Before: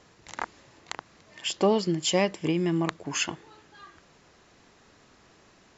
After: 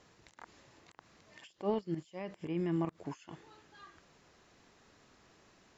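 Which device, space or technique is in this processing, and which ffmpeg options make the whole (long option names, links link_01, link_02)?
de-esser from a sidechain: -filter_complex "[0:a]asplit=2[link_01][link_02];[link_02]highpass=frequency=5800:width=0.5412,highpass=frequency=5800:width=1.3066,apad=whole_len=254873[link_03];[link_01][link_03]sidechaincompress=threshold=-55dB:ratio=20:attack=0.84:release=69,asettb=1/sr,asplit=3[link_04][link_05][link_06];[link_04]atrim=end=1.474[link_07];[link_05]atrim=start=1.47:end=3.05,asetpts=PTS-STARTPTS,afade=type=in:duration=0.004:curve=qsin,afade=type=out:start_time=1.576:duration=0.004:curve=qsin,acrossover=split=2600[link_08][link_09];[link_09]acompressor=threshold=-57dB:ratio=4:attack=1:release=60[link_10];[link_08][link_10]amix=inputs=2:normalize=0[link_11];[link_06]atrim=start=3.046[link_12];[link_07][link_11]acrossfade=duration=0.004:curve1=hsin:curve2=qsin[link_13];[link_13][link_12]acrossfade=duration=0.004:curve1=qsin:curve2=hsin,volume=-6dB"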